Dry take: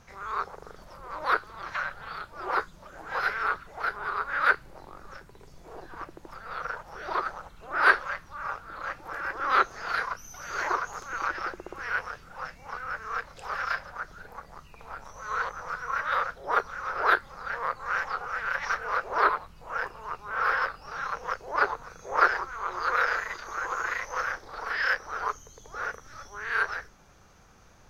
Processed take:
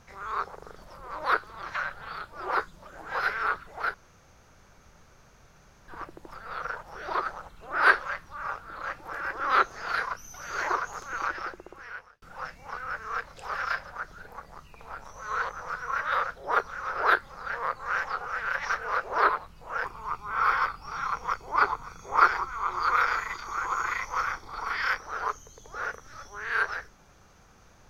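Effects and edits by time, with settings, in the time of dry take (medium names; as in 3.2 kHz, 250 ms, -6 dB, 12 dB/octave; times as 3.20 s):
3.94–5.88 s: room tone
11.21–12.22 s: fade out
19.84–25.01 s: comb 0.9 ms, depth 57%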